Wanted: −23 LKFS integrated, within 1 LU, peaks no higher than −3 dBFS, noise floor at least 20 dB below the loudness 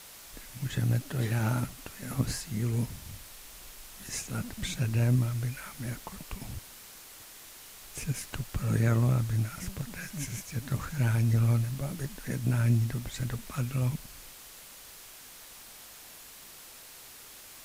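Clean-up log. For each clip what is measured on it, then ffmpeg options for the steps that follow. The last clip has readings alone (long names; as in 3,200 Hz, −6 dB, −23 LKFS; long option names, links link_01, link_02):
background noise floor −49 dBFS; target noise floor −51 dBFS; integrated loudness −31.0 LKFS; sample peak −13.5 dBFS; target loudness −23.0 LKFS
→ -af "afftdn=noise_reduction=6:noise_floor=-49"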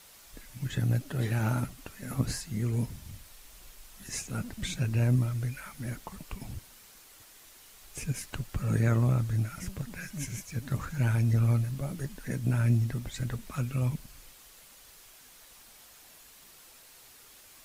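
background noise floor −55 dBFS; integrated loudness −31.0 LKFS; sample peak −14.0 dBFS; target loudness −23.0 LKFS
→ -af "volume=8dB"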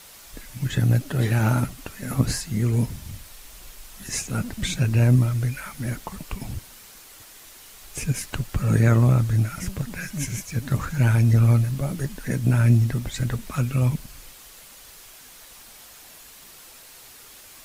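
integrated loudness −23.0 LKFS; sample peak −6.0 dBFS; background noise floor −47 dBFS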